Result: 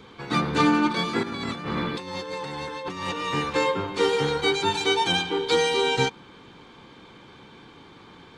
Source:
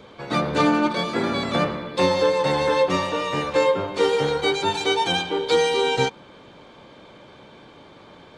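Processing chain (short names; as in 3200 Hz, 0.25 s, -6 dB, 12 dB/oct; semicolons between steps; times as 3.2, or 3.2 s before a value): bell 600 Hz -14.5 dB 0.35 oct; 1.23–3.28 negative-ratio compressor -32 dBFS, ratio -1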